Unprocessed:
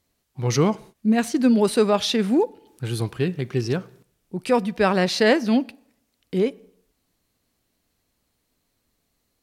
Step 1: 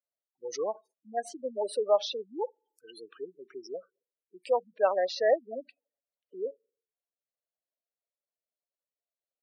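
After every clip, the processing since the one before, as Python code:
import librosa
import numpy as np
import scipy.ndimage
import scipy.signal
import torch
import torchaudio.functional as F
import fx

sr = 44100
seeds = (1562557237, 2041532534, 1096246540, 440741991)

y = fx.noise_reduce_blind(x, sr, reduce_db=16)
y = fx.spec_gate(y, sr, threshold_db=-15, keep='strong')
y = fx.ladder_highpass(y, sr, hz=520.0, resonance_pct=60)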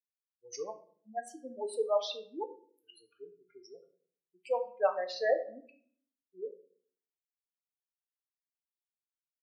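y = fx.bin_expand(x, sr, power=2.0)
y = fx.room_shoebox(y, sr, seeds[0], volume_m3=59.0, walls='mixed', distance_m=0.34)
y = y * librosa.db_to_amplitude(-2.0)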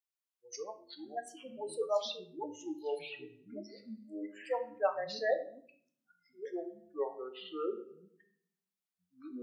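y = fx.low_shelf(x, sr, hz=260.0, db=-11.0)
y = fx.echo_pitch(y, sr, ms=155, semitones=-6, count=2, db_per_echo=-6.0)
y = y * librosa.db_to_amplitude(-1.0)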